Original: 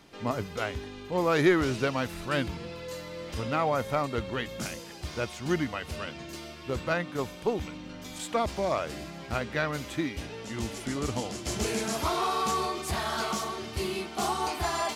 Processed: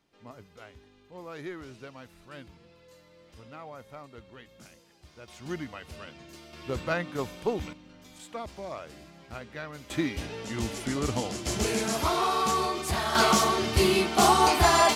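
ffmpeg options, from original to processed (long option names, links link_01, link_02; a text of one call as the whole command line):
ffmpeg -i in.wav -af "asetnsamples=nb_out_samples=441:pad=0,asendcmd='5.28 volume volume -7.5dB;6.53 volume volume -0.5dB;7.73 volume volume -10dB;9.9 volume volume 2dB;13.15 volume volume 9.5dB',volume=-17dB" out.wav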